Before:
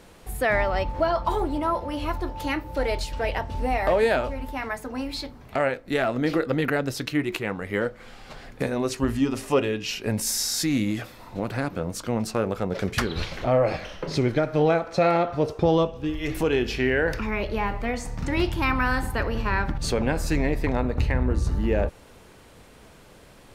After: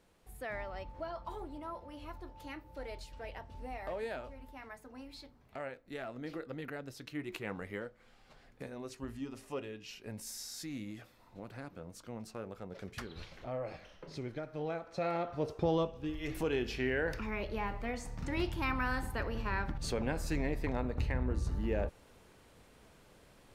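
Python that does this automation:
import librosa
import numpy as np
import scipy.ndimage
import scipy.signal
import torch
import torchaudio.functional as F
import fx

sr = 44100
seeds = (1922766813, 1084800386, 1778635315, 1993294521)

y = fx.gain(x, sr, db=fx.line((7.0, -18.5), (7.6, -9.5), (7.87, -18.5), (14.58, -18.5), (15.53, -10.5)))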